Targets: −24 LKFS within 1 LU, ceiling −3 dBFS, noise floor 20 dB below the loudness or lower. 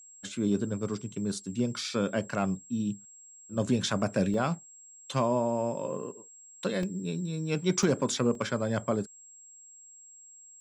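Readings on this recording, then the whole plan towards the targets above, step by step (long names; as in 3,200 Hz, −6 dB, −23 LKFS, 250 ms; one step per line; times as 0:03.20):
number of dropouts 4; longest dropout 2.2 ms; interfering tone 7,600 Hz; level of the tone −50 dBFS; integrated loudness −30.5 LKFS; sample peak −14.5 dBFS; target loudness −24.0 LKFS
→ repair the gap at 0:04.34/0:06.83/0:07.83/0:08.35, 2.2 ms
notch filter 7,600 Hz, Q 30
level +6.5 dB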